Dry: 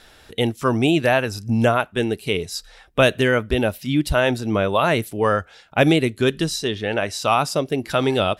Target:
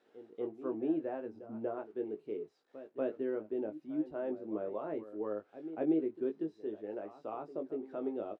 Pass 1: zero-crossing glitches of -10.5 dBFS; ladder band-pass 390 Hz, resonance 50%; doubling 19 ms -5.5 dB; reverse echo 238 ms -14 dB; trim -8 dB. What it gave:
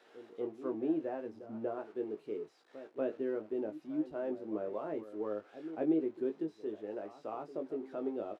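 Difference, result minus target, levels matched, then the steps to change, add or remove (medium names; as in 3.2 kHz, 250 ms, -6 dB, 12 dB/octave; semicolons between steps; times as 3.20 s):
zero-crossing glitches: distortion +12 dB
change: zero-crossing glitches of -22.5 dBFS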